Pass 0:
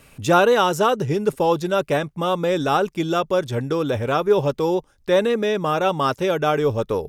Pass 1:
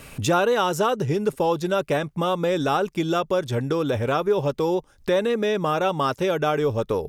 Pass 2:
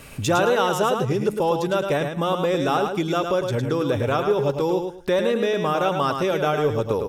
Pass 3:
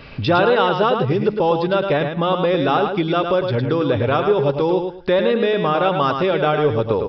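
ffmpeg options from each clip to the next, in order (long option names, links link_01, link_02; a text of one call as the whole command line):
ffmpeg -i in.wav -af "acompressor=threshold=-35dB:ratio=2,volume=7.5dB" out.wav
ffmpeg -i in.wav -af "aecho=1:1:107|214|321:0.501|0.115|0.0265" out.wav
ffmpeg -i in.wav -af "aresample=11025,aresample=44100,volume=4dB" out.wav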